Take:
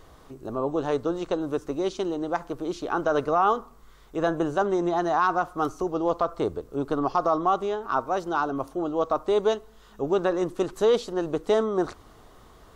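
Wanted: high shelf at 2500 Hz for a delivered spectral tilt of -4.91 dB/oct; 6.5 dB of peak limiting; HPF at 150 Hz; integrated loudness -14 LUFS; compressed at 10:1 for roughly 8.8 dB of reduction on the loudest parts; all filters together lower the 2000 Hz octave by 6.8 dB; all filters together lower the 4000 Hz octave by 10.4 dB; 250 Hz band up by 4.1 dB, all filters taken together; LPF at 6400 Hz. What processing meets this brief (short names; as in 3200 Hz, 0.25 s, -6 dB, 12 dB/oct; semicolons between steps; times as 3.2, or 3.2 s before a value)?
HPF 150 Hz; LPF 6400 Hz; bell 250 Hz +7 dB; bell 2000 Hz -8 dB; high shelf 2500 Hz -5 dB; bell 4000 Hz -5.5 dB; compressor 10:1, threshold -25 dBFS; gain +18 dB; limiter -4 dBFS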